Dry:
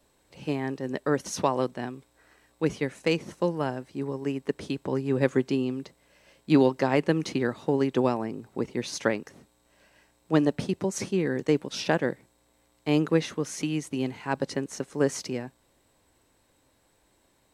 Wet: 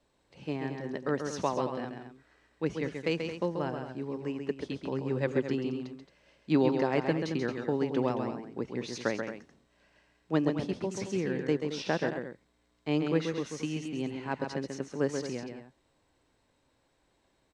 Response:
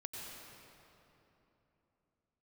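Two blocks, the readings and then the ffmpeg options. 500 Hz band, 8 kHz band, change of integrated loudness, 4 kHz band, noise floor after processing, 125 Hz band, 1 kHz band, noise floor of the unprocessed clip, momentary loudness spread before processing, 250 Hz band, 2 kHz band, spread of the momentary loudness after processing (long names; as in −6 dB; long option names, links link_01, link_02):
−4.5 dB, −8.5 dB, −4.5 dB, −5.0 dB, −72 dBFS, −4.5 dB, −4.5 dB, −67 dBFS, 10 LU, −4.5 dB, −4.5 dB, 10 LU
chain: -af "lowpass=5800,aecho=1:1:134.1|221.6:0.501|0.282,volume=-5.5dB"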